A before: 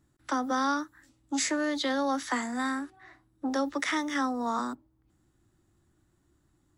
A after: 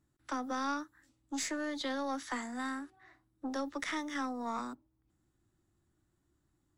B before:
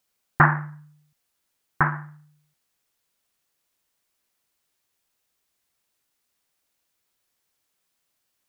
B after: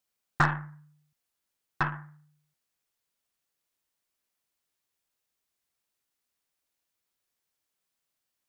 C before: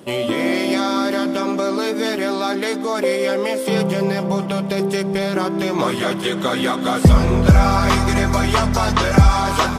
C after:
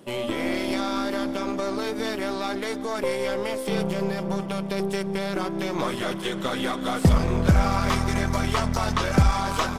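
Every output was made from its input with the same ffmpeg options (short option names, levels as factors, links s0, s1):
-af "aeval=exprs='0.891*(cos(1*acos(clip(val(0)/0.891,-1,1)))-cos(1*PI/2))+0.1*(cos(3*acos(clip(val(0)/0.891,-1,1)))-cos(3*PI/2))+0.0316*(cos(5*acos(clip(val(0)/0.891,-1,1)))-cos(5*PI/2))+0.0447*(cos(8*acos(clip(val(0)/0.891,-1,1)))-cos(8*PI/2))':c=same,volume=0.501"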